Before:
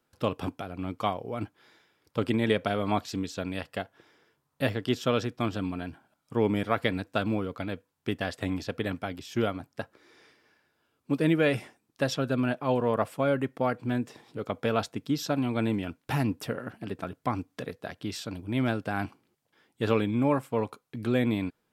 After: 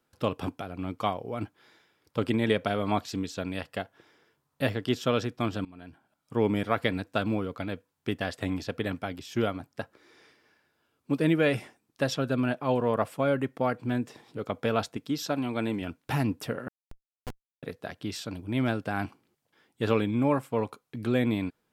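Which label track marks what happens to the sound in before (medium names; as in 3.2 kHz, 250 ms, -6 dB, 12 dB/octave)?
5.650000	6.400000	fade in, from -21.5 dB
14.970000	15.820000	bass shelf 150 Hz -9 dB
16.680000	17.630000	Schmitt trigger flips at -23 dBFS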